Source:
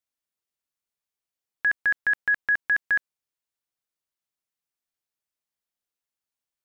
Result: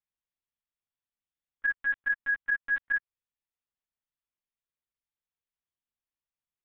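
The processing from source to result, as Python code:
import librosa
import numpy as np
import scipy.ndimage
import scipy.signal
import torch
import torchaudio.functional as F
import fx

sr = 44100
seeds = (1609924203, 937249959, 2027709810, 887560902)

y = fx.lpc_vocoder(x, sr, seeds[0], excitation='pitch_kept', order=8)
y = y * librosa.db_to_amplitude(-5.5)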